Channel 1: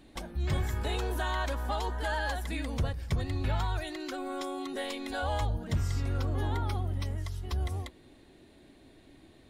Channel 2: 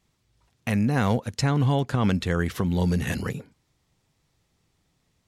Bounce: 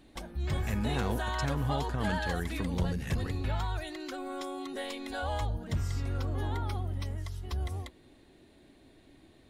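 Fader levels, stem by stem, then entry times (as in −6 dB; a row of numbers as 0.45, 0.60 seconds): −2.0, −11.0 decibels; 0.00, 0.00 seconds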